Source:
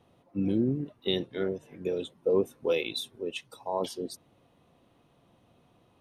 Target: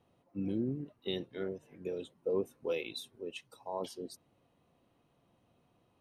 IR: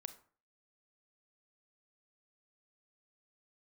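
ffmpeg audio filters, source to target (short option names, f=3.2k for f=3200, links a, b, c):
-af "bandreject=f=3.5k:w=16,volume=-7.5dB"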